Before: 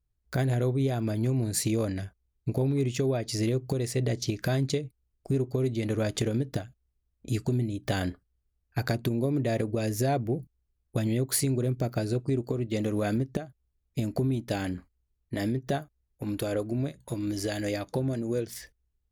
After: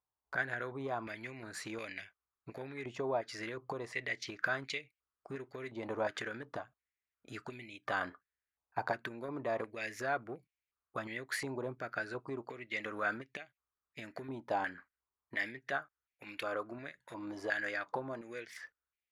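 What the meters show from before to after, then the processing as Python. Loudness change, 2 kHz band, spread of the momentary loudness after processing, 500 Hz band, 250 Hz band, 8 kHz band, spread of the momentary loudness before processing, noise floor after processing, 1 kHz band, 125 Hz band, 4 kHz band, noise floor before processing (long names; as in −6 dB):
−10.0 dB, +3.5 dB, 12 LU, −9.5 dB, −16.5 dB, −17.5 dB, 9 LU, below −85 dBFS, −1.0 dB, −23.5 dB, −9.0 dB, −78 dBFS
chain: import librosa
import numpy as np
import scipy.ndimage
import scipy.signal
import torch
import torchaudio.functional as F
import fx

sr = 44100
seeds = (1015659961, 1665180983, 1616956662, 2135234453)

p1 = 10.0 ** (-21.0 / 20.0) * np.tanh(x / 10.0 ** (-21.0 / 20.0))
p2 = x + (p1 * librosa.db_to_amplitude(-11.0))
p3 = fx.filter_held_bandpass(p2, sr, hz=2.8, low_hz=930.0, high_hz=2300.0)
y = p3 * librosa.db_to_amplitude(7.0)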